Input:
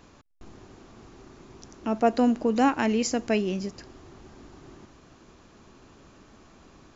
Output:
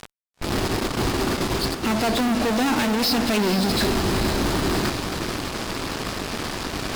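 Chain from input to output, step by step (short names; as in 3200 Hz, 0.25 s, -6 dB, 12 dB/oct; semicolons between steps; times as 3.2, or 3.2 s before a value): nonlinear frequency compression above 2700 Hz 1.5:1; gate -47 dBFS, range -25 dB; high shelf 5500 Hz +10 dB; reverse; upward compressor, threshold -26 dBFS; reverse; sample leveller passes 3; compressor, threshold -21 dBFS, peak gain reduction 8 dB; fuzz box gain 40 dB, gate -47 dBFS; on a send: diffused feedback echo 0.465 s, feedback 48%, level -8.5 dB; on the sum: gain -7 dB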